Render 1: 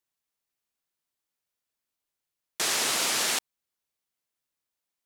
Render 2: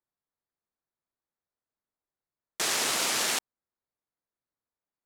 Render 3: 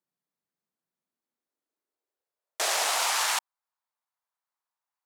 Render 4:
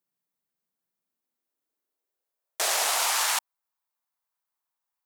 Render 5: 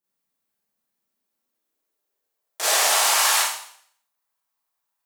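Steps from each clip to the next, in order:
adaptive Wiener filter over 15 samples
high-pass filter sweep 170 Hz → 920 Hz, 0:00.86–0:03.20
high-shelf EQ 12,000 Hz +10.5 dB
four-comb reverb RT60 0.61 s, combs from 28 ms, DRR −9.5 dB; level −3.5 dB

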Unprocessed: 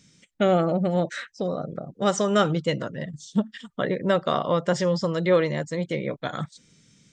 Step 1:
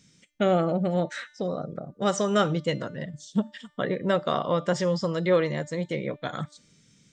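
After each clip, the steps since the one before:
hum removal 297 Hz, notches 32
level −2 dB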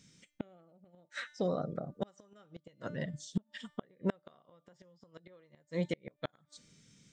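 gate with flip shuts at −18 dBFS, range −35 dB
level −3 dB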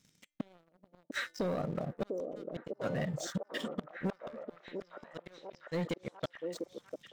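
leveller curve on the samples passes 3
downward compressor 4 to 1, threshold −28 dBFS, peak gain reduction 6 dB
on a send: echo through a band-pass that steps 698 ms, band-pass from 400 Hz, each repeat 0.7 octaves, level −1 dB
on the sum: level −4 dB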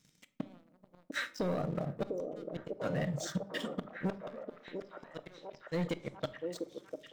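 rectangular room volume 730 cubic metres, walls furnished, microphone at 0.52 metres

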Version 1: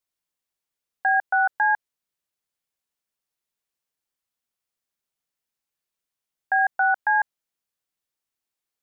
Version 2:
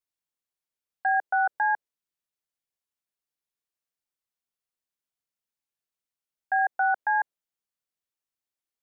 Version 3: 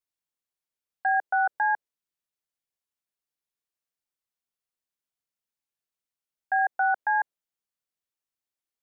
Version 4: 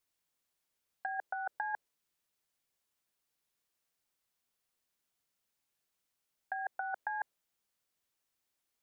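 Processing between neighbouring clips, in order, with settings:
dynamic equaliser 460 Hz, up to +8 dB, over −38 dBFS, Q 0.8; level −6.5 dB
no processing that can be heard
compressor whose output falls as the input rises −30 dBFS, ratio −0.5; level −3.5 dB

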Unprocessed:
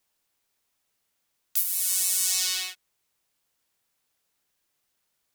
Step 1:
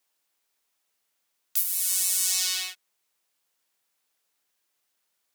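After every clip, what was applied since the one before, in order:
high-pass filter 350 Hz 6 dB per octave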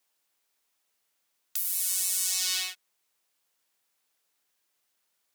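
brickwall limiter −11.5 dBFS, peak gain reduction 9 dB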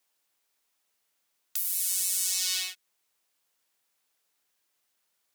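dynamic equaliser 830 Hz, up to −6 dB, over −52 dBFS, Q 0.74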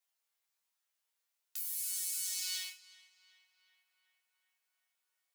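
high-pass filter 600 Hz 12 dB per octave
resonators tuned to a chord D#2 fifth, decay 0.23 s
feedback echo with a low-pass in the loop 372 ms, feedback 76%, low-pass 2,700 Hz, level −15.5 dB

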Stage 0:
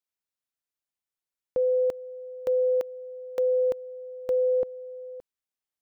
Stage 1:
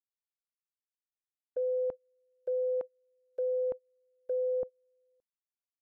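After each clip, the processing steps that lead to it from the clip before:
noise gate −28 dBFS, range −28 dB
treble cut that deepens with the level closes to 1,200 Hz, closed at −22.5 dBFS
dynamic equaliser 380 Hz, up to −4 dB, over −36 dBFS, Q 1.5
level −5 dB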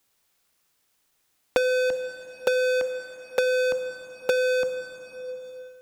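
leveller curve on the samples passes 5
dense smooth reverb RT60 1.3 s, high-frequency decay 0.95×, DRR 8.5 dB
multiband upward and downward compressor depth 100%
level +5 dB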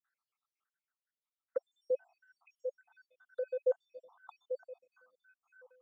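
time-frequency cells dropped at random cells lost 78%
square-wave tremolo 0.55 Hz, depth 60%, duty 35%
envelope filter 570–1,500 Hz, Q 6.6, down, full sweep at −36 dBFS
level +3.5 dB

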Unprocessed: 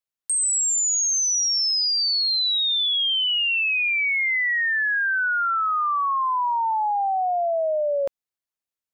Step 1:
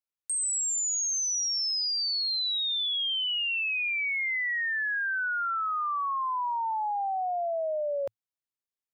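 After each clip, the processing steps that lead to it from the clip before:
parametric band 110 Hz +4 dB 0.32 octaves
level −7 dB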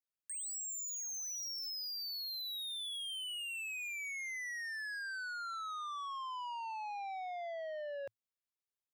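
soft clipping −35 dBFS, distortion −13 dB
level −5.5 dB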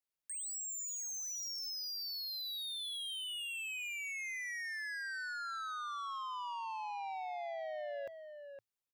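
slap from a distant wall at 88 metres, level −8 dB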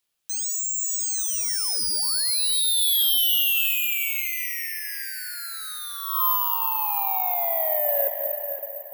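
high-pass filter sweep 3,000 Hz → 420 Hz, 0:05.88–0:06.57
convolution reverb RT60 3.9 s, pre-delay 135 ms, DRR 6.5 dB
bad sample-rate conversion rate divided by 3×, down none, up zero stuff
level +8.5 dB

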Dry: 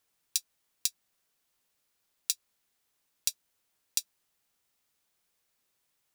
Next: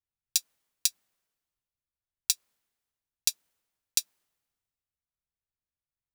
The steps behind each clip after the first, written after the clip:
multiband upward and downward expander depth 70%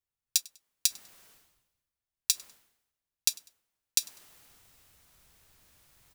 reversed playback
upward compression, threshold −38 dBFS
reversed playback
repeating echo 99 ms, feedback 32%, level −24 dB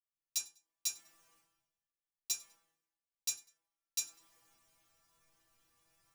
stiff-string resonator 160 Hz, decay 0.3 s, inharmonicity 0.002
hard clipping −24 dBFS, distortion −19 dB
convolution reverb RT60 0.25 s, pre-delay 4 ms, DRR −4 dB
level −2 dB

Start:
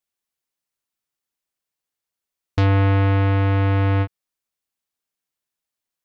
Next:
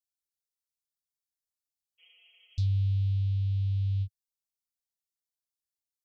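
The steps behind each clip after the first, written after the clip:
inverse Chebyshev band-stop filter 240–1,700 Hz, stop band 50 dB
healed spectral selection 0:02.02–0:02.63, 350–3,300 Hz after
level −7.5 dB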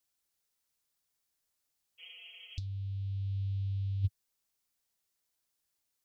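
compressor whose output falls as the input rises −33 dBFS, ratio −0.5
level +1.5 dB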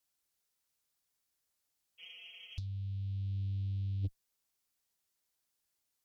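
tube saturation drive 29 dB, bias 0.3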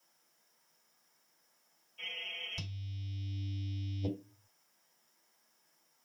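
convolution reverb RT60 0.30 s, pre-delay 3 ms, DRR −2.5 dB
level +6 dB

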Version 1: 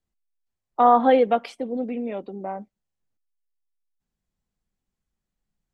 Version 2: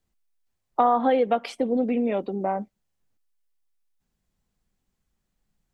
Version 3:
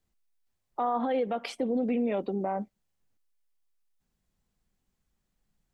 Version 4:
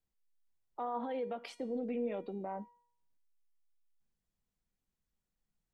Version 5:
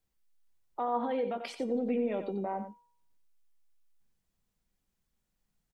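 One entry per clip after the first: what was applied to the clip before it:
downward compressor 4 to 1, threshold −25 dBFS, peak gain reduction 11.5 dB; level +6 dB
brickwall limiter −19.5 dBFS, peak gain reduction 10.5 dB; level −1.5 dB
tuned comb filter 480 Hz, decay 0.66 s, mix 70%
single-tap delay 91 ms −9.5 dB; level +5.5 dB

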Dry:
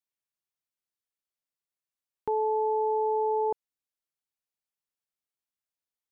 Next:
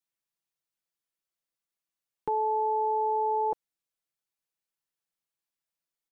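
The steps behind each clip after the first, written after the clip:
comb filter 6 ms, depth 54%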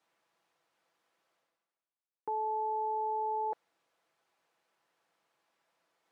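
reversed playback
upward compression, threshold −38 dBFS
reversed playback
resonant band-pass 760 Hz, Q 0.78
level −5.5 dB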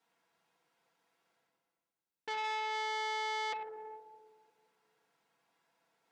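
notch comb filter 600 Hz
rectangular room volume 2,200 cubic metres, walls mixed, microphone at 1.7 metres
saturating transformer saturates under 2,300 Hz

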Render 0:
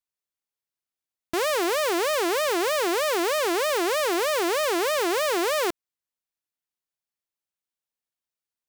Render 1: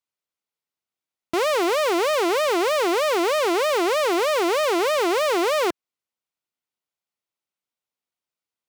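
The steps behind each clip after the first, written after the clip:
high-pass filter 110 Hz 6 dB per octave
high-shelf EQ 5,800 Hz −9 dB
notch filter 1,700 Hz, Q 9
level +4 dB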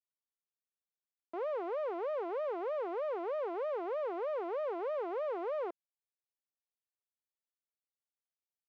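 four-pole ladder band-pass 640 Hz, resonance 30%
level −4.5 dB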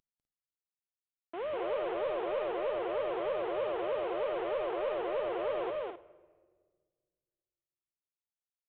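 variable-slope delta modulation 16 kbit/s
loudspeakers that aren't time-aligned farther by 68 metres −2 dB, 86 metres −7 dB
rectangular room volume 1,800 cubic metres, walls mixed, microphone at 0.32 metres

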